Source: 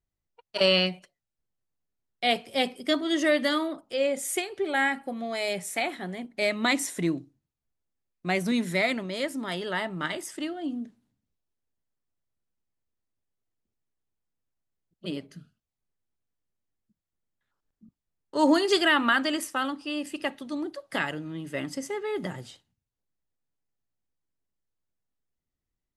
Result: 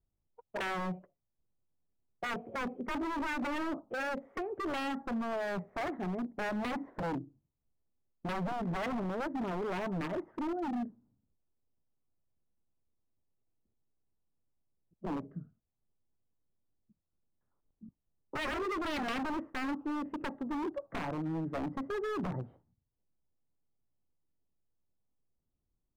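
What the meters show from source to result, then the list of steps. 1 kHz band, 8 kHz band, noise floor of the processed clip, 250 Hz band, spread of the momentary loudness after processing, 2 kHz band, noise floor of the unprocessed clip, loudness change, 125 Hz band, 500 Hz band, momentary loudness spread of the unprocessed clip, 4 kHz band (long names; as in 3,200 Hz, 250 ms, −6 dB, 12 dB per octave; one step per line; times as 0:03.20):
−5.5 dB, −19.5 dB, −84 dBFS, −6.5 dB, 5 LU, −11.5 dB, below −85 dBFS, −9.0 dB, −2.5 dB, −9.5 dB, 14 LU, −18.0 dB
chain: low-pass filter 1,200 Hz 24 dB per octave
tilt shelving filter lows +3.5 dB, about 760 Hz
downward compressor 2 to 1, threshold −27 dBFS, peak gain reduction 7.5 dB
wave folding −30 dBFS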